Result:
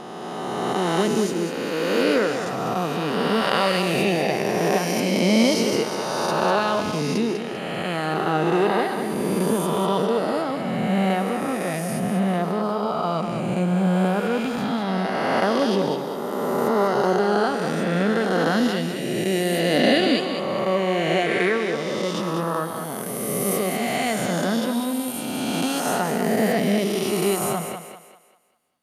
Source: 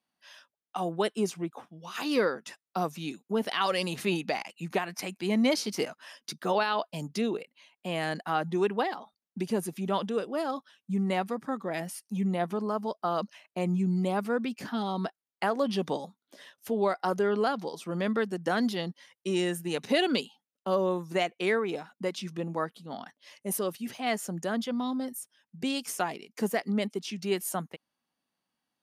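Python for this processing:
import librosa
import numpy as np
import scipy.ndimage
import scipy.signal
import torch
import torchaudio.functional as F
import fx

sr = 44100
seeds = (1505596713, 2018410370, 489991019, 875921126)

p1 = fx.spec_swells(x, sr, rise_s=2.98)
p2 = fx.low_shelf(p1, sr, hz=330.0, db=7.5)
y = p2 + fx.echo_thinned(p2, sr, ms=197, feedback_pct=39, hz=260.0, wet_db=-7.0, dry=0)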